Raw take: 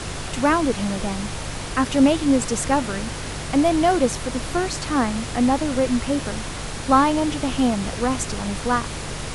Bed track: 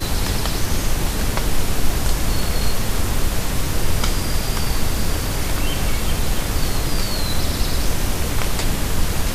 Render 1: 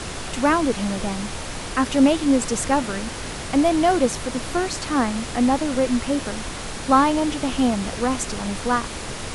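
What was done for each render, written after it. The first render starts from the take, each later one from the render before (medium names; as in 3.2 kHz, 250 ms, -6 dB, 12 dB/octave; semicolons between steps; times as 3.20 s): de-hum 50 Hz, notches 3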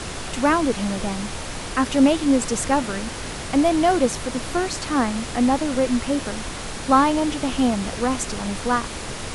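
no audible change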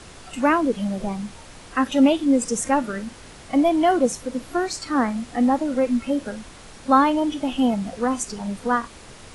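noise print and reduce 12 dB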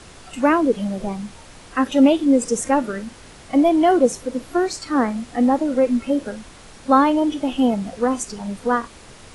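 dynamic bell 420 Hz, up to +6 dB, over -32 dBFS, Q 1.4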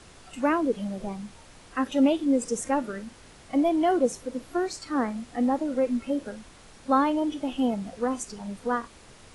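trim -7.5 dB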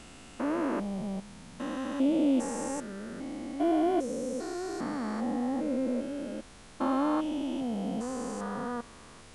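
spectrogram pixelated in time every 400 ms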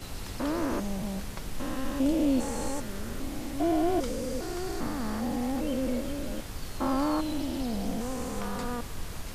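add bed track -18 dB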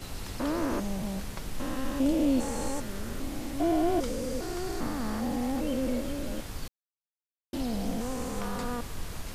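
6.68–7.53 s: mute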